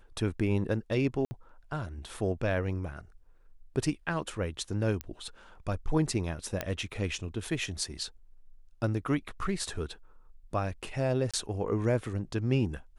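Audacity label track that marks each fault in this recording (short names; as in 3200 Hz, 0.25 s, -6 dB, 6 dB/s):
1.250000	1.310000	gap 60 ms
5.010000	5.010000	pop -19 dBFS
6.610000	6.610000	pop -15 dBFS
11.310000	11.340000	gap 26 ms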